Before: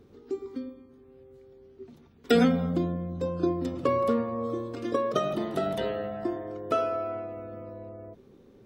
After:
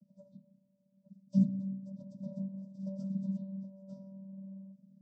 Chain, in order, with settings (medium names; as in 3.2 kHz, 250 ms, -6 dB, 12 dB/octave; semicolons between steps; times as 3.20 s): de-hum 174.5 Hz, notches 20; plain phase-vocoder stretch 0.58×; elliptic band-stop 400–5400 Hz, stop band 40 dB; vocoder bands 16, square 193 Hz